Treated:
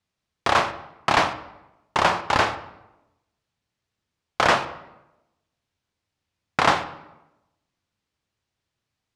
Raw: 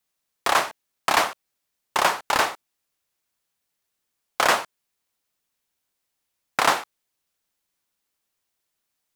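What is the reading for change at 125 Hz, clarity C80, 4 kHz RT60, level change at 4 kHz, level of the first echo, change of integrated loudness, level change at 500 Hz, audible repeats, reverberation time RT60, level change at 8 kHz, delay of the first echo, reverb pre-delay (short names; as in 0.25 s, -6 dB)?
+12.0 dB, 15.5 dB, 0.65 s, -0.5 dB, none, +0.5 dB, +2.5 dB, none, 0.95 s, -7.0 dB, none, 8 ms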